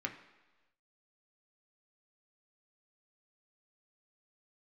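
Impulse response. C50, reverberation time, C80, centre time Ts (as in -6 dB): 11.0 dB, 1.2 s, 13.0 dB, 14 ms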